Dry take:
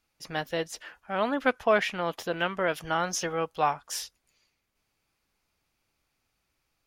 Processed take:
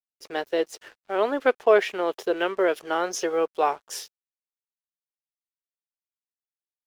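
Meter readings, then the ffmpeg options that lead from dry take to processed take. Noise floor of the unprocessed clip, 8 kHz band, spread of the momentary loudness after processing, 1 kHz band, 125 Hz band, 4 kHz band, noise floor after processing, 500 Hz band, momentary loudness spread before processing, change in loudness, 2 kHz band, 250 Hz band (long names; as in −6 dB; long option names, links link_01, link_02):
−78 dBFS, −1.0 dB, 14 LU, +1.5 dB, below −10 dB, −0.5 dB, below −85 dBFS, +6.5 dB, 11 LU, +4.0 dB, +0.5 dB, +2.5 dB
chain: -af "highpass=frequency=390:width_type=q:width=4.4,aeval=exprs='sgn(val(0))*max(abs(val(0))-0.00299,0)':channel_layout=same"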